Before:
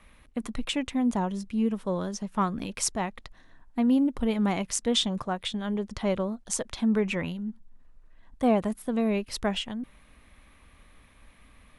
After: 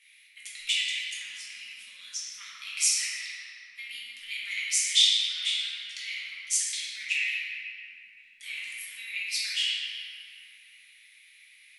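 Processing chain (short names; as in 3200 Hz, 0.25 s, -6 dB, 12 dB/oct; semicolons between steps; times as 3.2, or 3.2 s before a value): elliptic high-pass 2100 Hz, stop band 60 dB; shoebox room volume 150 m³, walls hard, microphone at 1.2 m; gain +1.5 dB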